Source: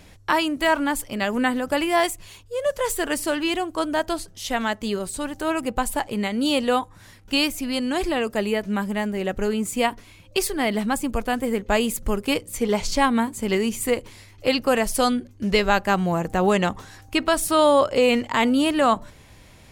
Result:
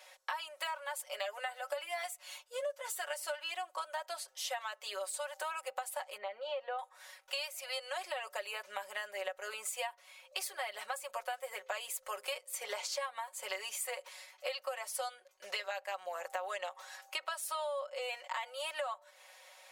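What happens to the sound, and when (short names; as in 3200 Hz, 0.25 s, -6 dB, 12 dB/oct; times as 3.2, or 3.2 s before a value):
1.05–3.52 comb 6.8 ms, depth 50%
6.17–6.79 tape spacing loss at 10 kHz 44 dB
whole clip: elliptic high-pass 550 Hz, stop band 50 dB; comb 5.4 ms, depth 87%; compressor 12:1, threshold -30 dBFS; gain -5.5 dB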